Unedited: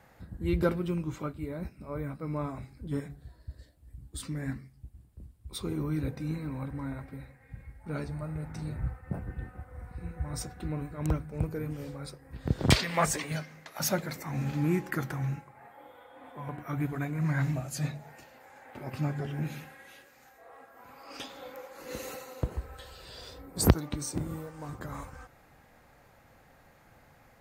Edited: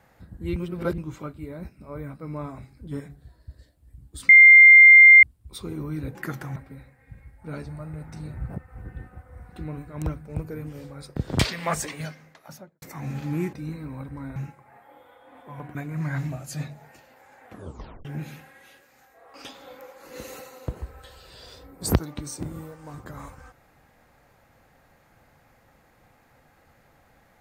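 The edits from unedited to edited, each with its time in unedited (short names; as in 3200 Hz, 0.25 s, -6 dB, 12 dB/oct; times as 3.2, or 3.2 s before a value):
0.56–0.98 reverse
4.29–5.23 bleep 2100 Hz -6.5 dBFS
6.15–6.98 swap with 14.84–15.25
8.91–9.2 reverse
9.94–10.56 cut
12.2–12.47 cut
13.41–14.13 studio fade out
16.64–16.99 cut
18.69 tape stop 0.60 s
20.58–21.09 cut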